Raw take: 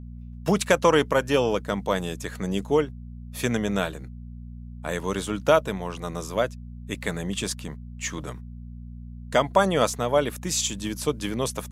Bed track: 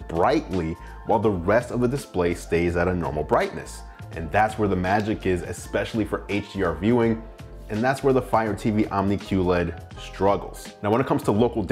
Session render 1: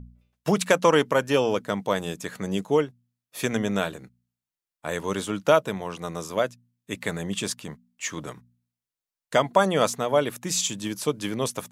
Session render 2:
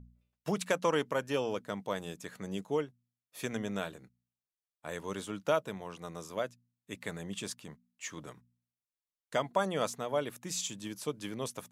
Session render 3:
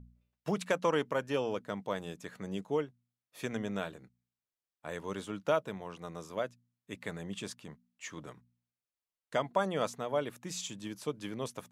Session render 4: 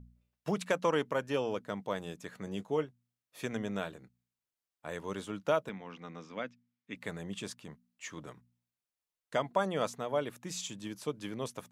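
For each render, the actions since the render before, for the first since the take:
de-hum 60 Hz, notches 4
trim -10.5 dB
treble shelf 5.3 kHz -7.5 dB
2.45–2.85 s: doubling 19 ms -11 dB; 5.69–6.96 s: cabinet simulation 160–5300 Hz, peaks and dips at 250 Hz +6 dB, 380 Hz -7 dB, 620 Hz -8 dB, 1 kHz -4 dB, 2.2 kHz +6 dB, 4.2 kHz -5 dB

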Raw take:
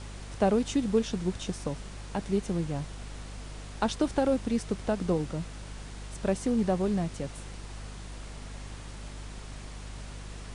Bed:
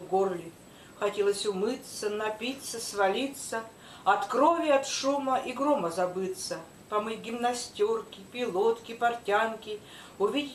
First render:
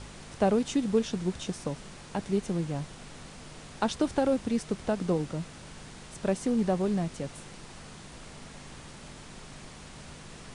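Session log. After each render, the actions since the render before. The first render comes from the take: de-hum 50 Hz, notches 2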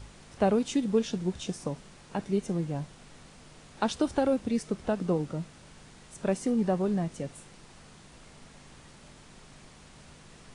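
noise print and reduce 6 dB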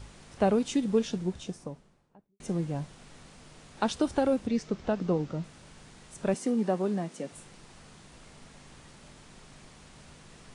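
0.98–2.40 s: studio fade out; 4.47–5.44 s: low-pass 6.7 kHz 24 dB/octave; 6.34–7.32 s: high-pass 190 Hz 24 dB/octave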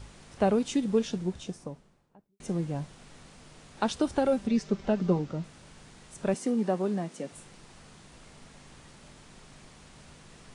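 4.25–5.19 s: comb 5.1 ms, depth 64%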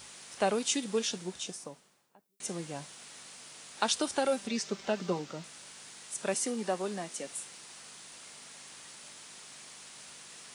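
high-pass 150 Hz 6 dB/octave; tilt EQ +3.5 dB/octave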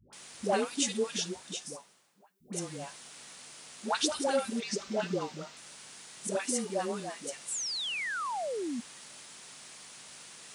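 7.38–8.79 s: painted sound fall 220–8100 Hz -35 dBFS; phase dispersion highs, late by 129 ms, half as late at 580 Hz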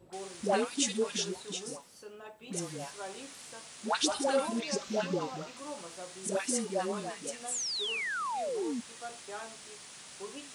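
add bed -17 dB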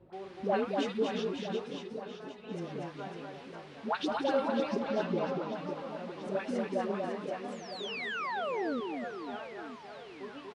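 distance through air 340 m; reverse bouncing-ball echo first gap 240 ms, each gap 1.3×, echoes 5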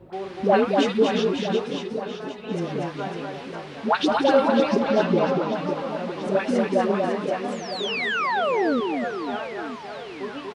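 trim +11.5 dB

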